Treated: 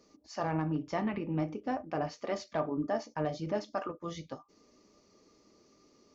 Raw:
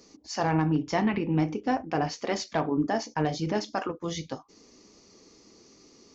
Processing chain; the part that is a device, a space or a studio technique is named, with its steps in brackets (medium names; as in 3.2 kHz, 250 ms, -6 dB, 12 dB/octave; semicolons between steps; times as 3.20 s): inside a helmet (treble shelf 3.9 kHz -7 dB; small resonant body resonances 600/1200 Hz, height 12 dB, ringing for 95 ms); trim -7.5 dB